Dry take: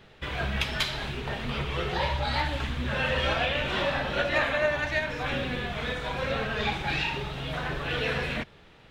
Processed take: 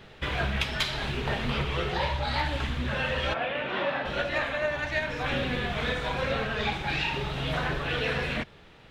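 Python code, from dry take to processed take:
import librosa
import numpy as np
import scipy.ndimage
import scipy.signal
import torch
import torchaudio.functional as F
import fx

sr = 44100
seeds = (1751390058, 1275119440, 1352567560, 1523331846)

y = fx.bandpass_edges(x, sr, low_hz=200.0, high_hz=fx.line((3.33, 2000.0), (4.04, 3200.0)), at=(3.33, 4.04), fade=0.02)
y = fx.rider(y, sr, range_db=5, speed_s=0.5)
y = fx.doppler_dist(y, sr, depth_ms=0.12)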